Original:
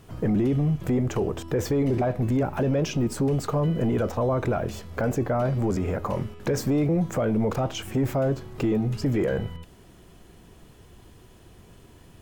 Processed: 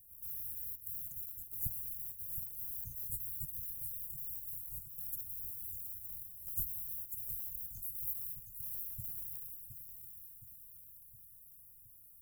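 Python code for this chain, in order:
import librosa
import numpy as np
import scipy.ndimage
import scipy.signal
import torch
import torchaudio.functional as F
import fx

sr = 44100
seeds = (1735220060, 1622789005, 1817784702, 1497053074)

y = fx.band_shuffle(x, sr, order='4123')
y = fx.quant_companded(y, sr, bits=6)
y = scipy.signal.sosfilt(scipy.signal.cheby2(4, 70, [520.0, 3900.0], 'bandstop', fs=sr, output='sos'), y)
y = fx.echo_feedback(y, sr, ms=717, feedback_pct=55, wet_db=-8.0)
y = F.gain(torch.from_numpy(y), 8.5).numpy()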